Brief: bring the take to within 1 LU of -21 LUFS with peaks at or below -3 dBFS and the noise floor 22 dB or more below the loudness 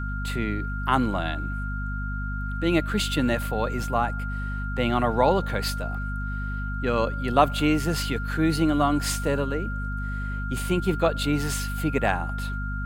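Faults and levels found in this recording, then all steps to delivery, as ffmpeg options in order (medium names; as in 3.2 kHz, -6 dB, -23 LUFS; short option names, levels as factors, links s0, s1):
hum 50 Hz; highest harmonic 250 Hz; hum level -28 dBFS; steady tone 1.4 kHz; tone level -34 dBFS; loudness -26.0 LUFS; peak level -4.5 dBFS; loudness target -21.0 LUFS
-> -af "bandreject=f=50:t=h:w=4,bandreject=f=100:t=h:w=4,bandreject=f=150:t=h:w=4,bandreject=f=200:t=h:w=4,bandreject=f=250:t=h:w=4"
-af "bandreject=f=1400:w=30"
-af "volume=1.78,alimiter=limit=0.708:level=0:latency=1"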